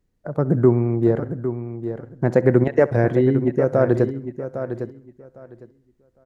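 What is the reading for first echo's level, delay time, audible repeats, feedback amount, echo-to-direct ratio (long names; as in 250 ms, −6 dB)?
−20.0 dB, 66 ms, 6, repeats not evenly spaced, −9.5 dB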